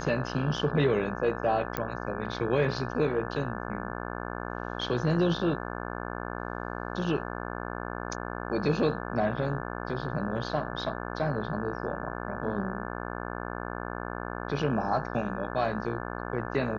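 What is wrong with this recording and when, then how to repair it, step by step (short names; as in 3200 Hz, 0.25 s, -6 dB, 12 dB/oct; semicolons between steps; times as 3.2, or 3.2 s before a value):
buzz 60 Hz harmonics 29 -36 dBFS
1.77 pop -14 dBFS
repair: de-click; de-hum 60 Hz, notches 29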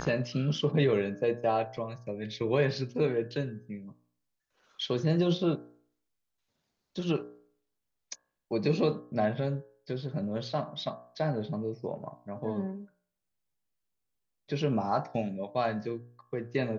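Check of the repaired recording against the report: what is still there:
none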